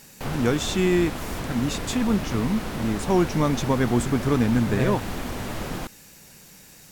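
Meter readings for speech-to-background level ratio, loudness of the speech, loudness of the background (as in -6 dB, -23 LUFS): 8.0 dB, -24.0 LUFS, -32.0 LUFS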